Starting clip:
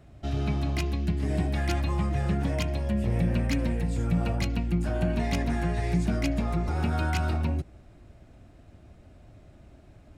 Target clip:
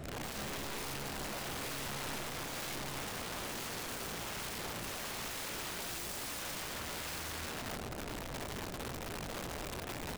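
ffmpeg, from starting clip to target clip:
-filter_complex "[0:a]bandreject=f=60:t=h:w=6,bandreject=f=120:t=h:w=6,bandreject=f=180:t=h:w=6,asettb=1/sr,asplit=3[s0][s1][s2];[s0]atrim=end=5.834[s3];[s1]atrim=start=5.83:end=6.43,asetpts=PTS-STARTPTS,afade=t=in:d=0.004:c=qsin,afade=t=out:st=0.596:d=0.004:c=qsin,bass=f=250:g=-6,treble=f=4000:g=8[s4];[s2]atrim=start=6.426[s5];[s3][s4]acrossfade=d=0.004:c1=hsin:c2=qsin[s6];[s6][s5]acrossfade=d=0.004:c1=qsin:c2=hsin,alimiter=level_in=1.19:limit=0.0631:level=0:latency=1:release=464,volume=0.841,aeval=exprs='(tanh(158*val(0)+0.3)-tanh(0.3))/158':c=same,aecho=1:1:43|79|125|325|475:0.2|0.562|0.562|0.112|0.106,aeval=exprs='(mod(251*val(0)+1,2)-1)/251':c=same,volume=3.76"

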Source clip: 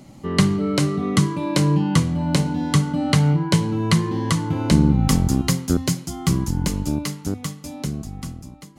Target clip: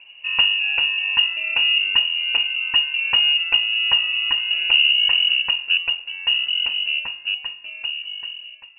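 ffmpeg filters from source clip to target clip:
-af "equalizer=f=100:t=o:w=0.67:g=7,equalizer=f=400:t=o:w=0.67:g=7,equalizer=f=1000:t=o:w=0.67:g=-6,lowpass=f=2600:t=q:w=0.5098,lowpass=f=2600:t=q:w=0.6013,lowpass=f=2600:t=q:w=0.9,lowpass=f=2600:t=q:w=2.563,afreqshift=-3000,volume=0.708"

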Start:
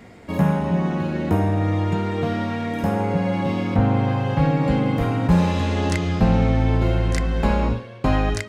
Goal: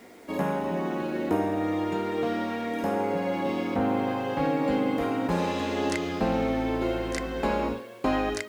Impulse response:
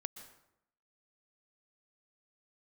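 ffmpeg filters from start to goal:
-af "acrusher=bits=8:mix=0:aa=0.000001,lowshelf=f=200:t=q:w=1.5:g=-13,volume=0.631"

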